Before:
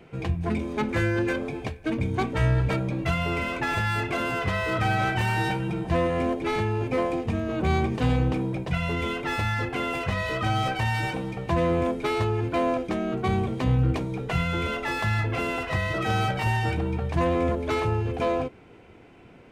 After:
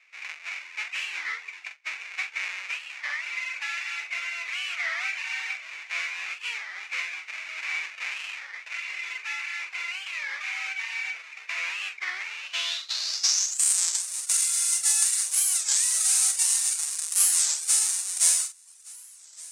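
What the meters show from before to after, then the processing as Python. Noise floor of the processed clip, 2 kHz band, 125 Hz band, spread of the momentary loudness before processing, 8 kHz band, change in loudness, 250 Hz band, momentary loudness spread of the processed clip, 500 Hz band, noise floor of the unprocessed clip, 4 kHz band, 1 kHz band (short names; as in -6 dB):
-48 dBFS, +0.5 dB, under -40 dB, 4 LU, +26.0 dB, +1.0 dB, under -40 dB, 15 LU, -30.0 dB, -50 dBFS, +6.0 dB, -15.5 dB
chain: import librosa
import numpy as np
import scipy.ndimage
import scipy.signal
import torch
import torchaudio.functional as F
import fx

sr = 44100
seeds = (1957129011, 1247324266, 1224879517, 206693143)

p1 = fx.halfwave_hold(x, sr)
p2 = fx.quant_dither(p1, sr, seeds[0], bits=6, dither='none')
p3 = p1 + F.gain(torch.from_numpy(p2), -8.0).numpy()
p4 = fx.peak_eq(p3, sr, hz=6500.0, db=10.0, octaves=0.92)
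p5 = fx.notch(p4, sr, hz=3200.0, q=14.0)
p6 = p5 + fx.echo_single(p5, sr, ms=1170, db=-22.5, dry=0)
p7 = fx.dereverb_blind(p6, sr, rt60_s=0.66)
p8 = scipy.signal.sosfilt(scipy.signal.butter(2, 1000.0, 'highpass', fs=sr, output='sos'), p7)
p9 = fx.doubler(p8, sr, ms=44.0, db=-8)
p10 = fx.filter_sweep_lowpass(p9, sr, from_hz=2300.0, to_hz=9100.0, start_s=12.26, end_s=13.88, q=6.2)
p11 = np.diff(p10, prepend=0.0)
p12 = fx.record_warp(p11, sr, rpm=33.33, depth_cents=250.0)
y = F.gain(torch.from_numpy(p12), -3.0).numpy()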